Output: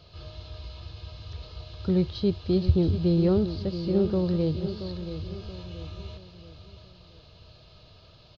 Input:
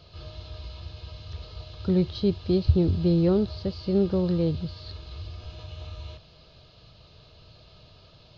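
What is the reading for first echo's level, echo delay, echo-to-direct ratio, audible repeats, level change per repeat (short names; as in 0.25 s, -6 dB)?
-10.5 dB, 0.678 s, -9.5 dB, 4, -7.5 dB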